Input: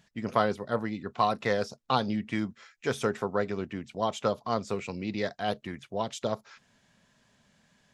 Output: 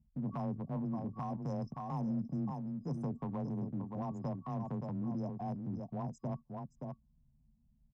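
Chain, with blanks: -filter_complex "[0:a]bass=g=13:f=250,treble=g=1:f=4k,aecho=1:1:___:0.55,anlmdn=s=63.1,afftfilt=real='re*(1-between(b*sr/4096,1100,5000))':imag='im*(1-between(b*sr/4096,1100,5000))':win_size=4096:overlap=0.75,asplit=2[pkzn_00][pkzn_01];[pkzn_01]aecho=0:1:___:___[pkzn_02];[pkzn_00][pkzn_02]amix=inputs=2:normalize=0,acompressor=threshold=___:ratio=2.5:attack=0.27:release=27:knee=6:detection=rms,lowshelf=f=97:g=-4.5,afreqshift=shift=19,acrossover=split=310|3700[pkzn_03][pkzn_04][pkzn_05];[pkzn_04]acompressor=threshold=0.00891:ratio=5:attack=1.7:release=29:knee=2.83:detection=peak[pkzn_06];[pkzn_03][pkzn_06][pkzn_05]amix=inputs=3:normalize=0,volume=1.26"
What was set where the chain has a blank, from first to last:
1.2, 573, 0.224, 0.00891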